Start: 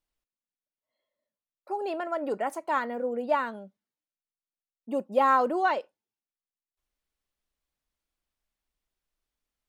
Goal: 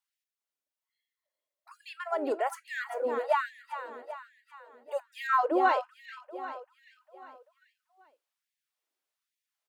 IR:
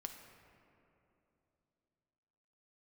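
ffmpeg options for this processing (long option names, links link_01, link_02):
-filter_complex "[0:a]asettb=1/sr,asplit=3[link_01][link_02][link_03];[link_01]atrim=end=5.274[link_04];[link_02]atrim=start=5.27:end=5.69,asetpts=PTS-STARTPTS,afade=type=in:duration=0.004:curve=qsin,afade=type=out:start_time=0.416:duration=0.004:curve=qsin,aemphasis=mode=reproduction:type=bsi[link_05];[link_03]atrim=start=5.686[link_06];[link_04][link_05]acrossfade=duration=0.004:curve1=hsin:curve2=qsin[link_07];[link_07][link_06]acrossfade=duration=0.004:curve1=qsin:curve2=hsin,aecho=1:1:393|786|1179|1572|1965|2358:0.299|0.161|0.0871|0.047|0.0254|0.0137,afftfilt=real='re*gte(b*sr/1024,230*pow(1700/230,0.5+0.5*sin(2*PI*1.2*pts/sr)))':imag='im*gte(b*sr/1024,230*pow(1700/230,0.5+0.5*sin(2*PI*1.2*pts/sr)))':win_size=1024:overlap=0.75"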